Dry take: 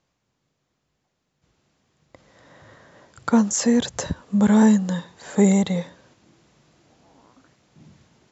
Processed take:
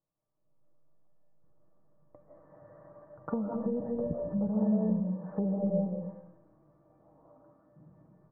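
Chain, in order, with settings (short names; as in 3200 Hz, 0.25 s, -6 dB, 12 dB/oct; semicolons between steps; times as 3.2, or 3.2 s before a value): inverse Chebyshev low-pass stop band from 3700 Hz, stop band 60 dB; comb 6.3 ms, depth 45%; compressor 6:1, threshold -18 dBFS, peak gain reduction 6.5 dB; resonator 590 Hz, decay 0.44 s, mix 90%; reverb RT60 0.80 s, pre-delay 0.115 s, DRR -0.5 dB; AGC gain up to 9.5 dB; treble ducked by the level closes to 630 Hz, closed at -29 dBFS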